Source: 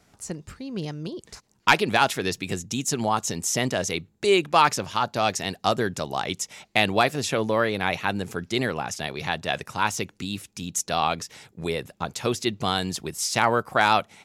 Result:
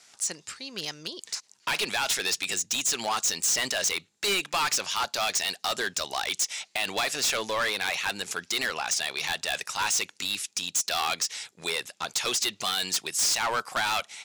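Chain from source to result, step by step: frequency weighting ITU-R 468; peak limiter -6.5 dBFS, peak gain reduction 11 dB; overload inside the chain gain 22.5 dB

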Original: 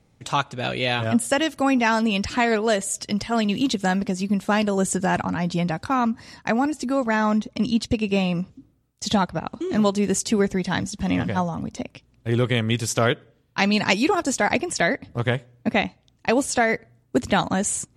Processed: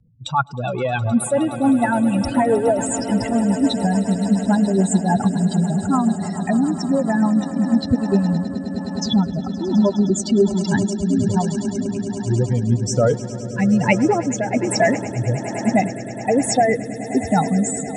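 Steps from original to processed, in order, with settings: spectral contrast enhancement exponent 3; echo with a slow build-up 104 ms, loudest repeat 8, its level -17.5 dB; rotary cabinet horn 7 Hz, later 1.2 Hz, at 7.08 s; trim +5.5 dB

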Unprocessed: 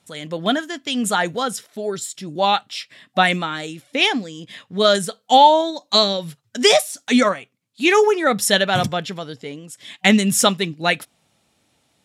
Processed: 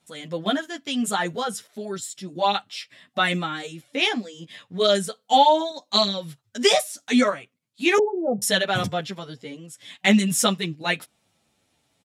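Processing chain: 7.98–8.42 s: steep low-pass 800 Hz 48 dB/octave; endless flanger 9.4 ms -2.9 Hz; trim -1.5 dB

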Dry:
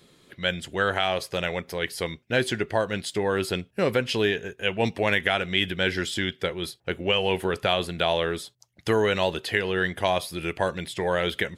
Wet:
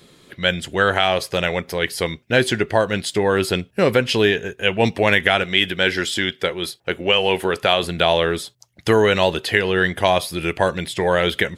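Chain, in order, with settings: 5.44–7.83 s: bass shelf 190 Hz -8.5 dB; trim +7 dB

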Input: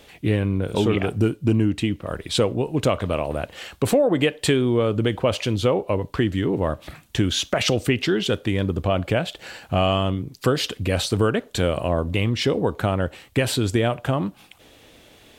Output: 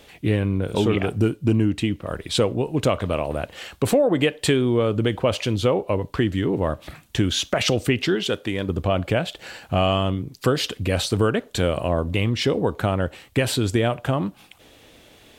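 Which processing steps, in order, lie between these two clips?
8.15–8.69 s: bass shelf 160 Hz -10.5 dB

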